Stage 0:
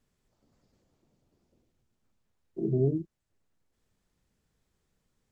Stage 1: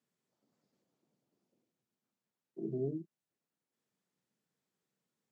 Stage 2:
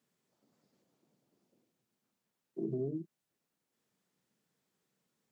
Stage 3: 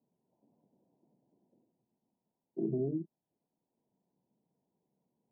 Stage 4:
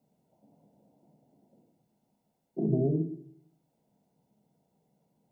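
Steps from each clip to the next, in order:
HPF 150 Hz 24 dB/oct; gain -8.5 dB
compressor, threshold -38 dBFS, peak gain reduction 7.5 dB; gain +5.5 dB
rippled Chebyshev low-pass 1000 Hz, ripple 3 dB; gain +4 dB
reverb RT60 0.65 s, pre-delay 14 ms, DRR 8 dB; gain +8 dB

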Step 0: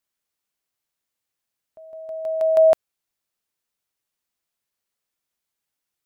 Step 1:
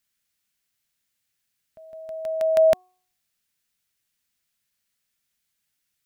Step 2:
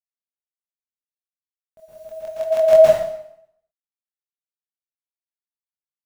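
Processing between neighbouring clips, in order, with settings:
band shelf 600 Hz -8.5 dB 2.3 oct; de-hum 366.8 Hz, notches 3; gain +6 dB
requantised 10-bit, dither none; chorus voices 4, 1.1 Hz, delay 24 ms, depth 3.9 ms; plate-style reverb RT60 0.72 s, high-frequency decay 0.9×, pre-delay 0.105 s, DRR -8 dB; gain +1.5 dB

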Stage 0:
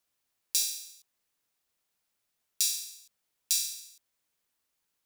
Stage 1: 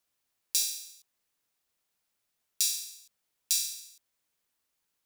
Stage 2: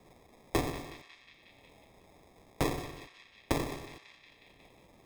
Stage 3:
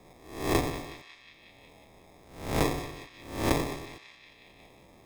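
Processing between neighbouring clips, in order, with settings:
nothing audible
sample-and-hold 30×; narrowing echo 0.181 s, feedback 49%, band-pass 2800 Hz, level -13 dB; three-band squash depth 70%
spectral swells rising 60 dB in 0.61 s; gain +2 dB

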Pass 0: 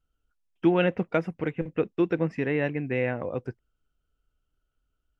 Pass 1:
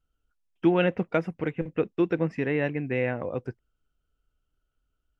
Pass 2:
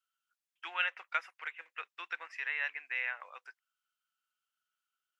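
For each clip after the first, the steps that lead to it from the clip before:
nothing audible
HPF 1200 Hz 24 dB/oct

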